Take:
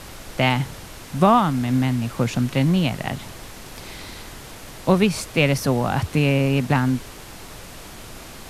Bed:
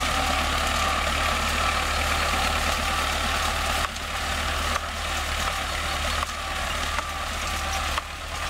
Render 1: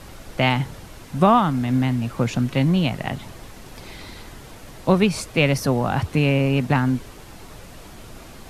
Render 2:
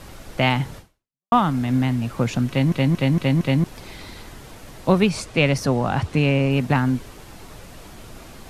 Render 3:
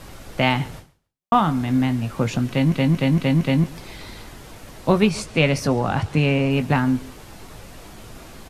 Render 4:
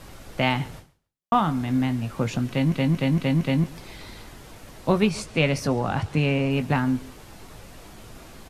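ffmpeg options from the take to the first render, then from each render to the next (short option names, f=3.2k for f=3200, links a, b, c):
-af "afftdn=nr=6:nf=-40"
-filter_complex "[0:a]asettb=1/sr,asplit=3[a][b][c];[a]atrim=end=5.104[d];[b]atrim=start=5.1:end=6.51,asetpts=PTS-STARTPTS,afade=t=in:d=0.004:c=qsin,afade=t=out:st=1.406:d=0.004:c=qsin,lowpass=9.4k[e];[c]atrim=start=6.506[f];[d][e]acrossfade=d=0.004:c1=hsin:c2=qsin[g];[g][f]acrossfade=d=0.004:c1=qsin:c2=hsin,asplit=7[h][i][j][k][l][m][n];[h]atrim=end=1.32,asetpts=PTS-STARTPTS,afade=t=out:st=0.78:d=0.54:c=exp[o];[i]atrim=start=1.32:end=2.722,asetpts=PTS-STARTPTS,afade=t=in:d=0.004:c=hsin[p];[j]atrim=start=2.488:end=2.722[q];[k]atrim=start=2.488:end=2.722[r];[l]atrim=start=2.488:end=2.722[s];[m]atrim=start=2.488:end=2.722[t];[n]atrim=start=3.638[u];[o][p]concat=n=2:v=0:a=1[v];[v][q]acrossfade=d=0.004:c1=hsin:c2=hsin[w];[w][r]acrossfade=d=0.004:c1=hsin:c2=hsin[x];[x][s]acrossfade=d=0.004:c1=hsin:c2=hsin[y];[y][t]acrossfade=d=0.004:c1=hsin:c2=hsin[z];[z][u]acrossfade=d=0.004:c1=hsin:c2=hsin"
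-filter_complex "[0:a]asplit=2[a][b];[b]adelay=19,volume=-10.5dB[c];[a][c]amix=inputs=2:normalize=0,aecho=1:1:140|280:0.075|0.015"
-af "volume=-3.5dB"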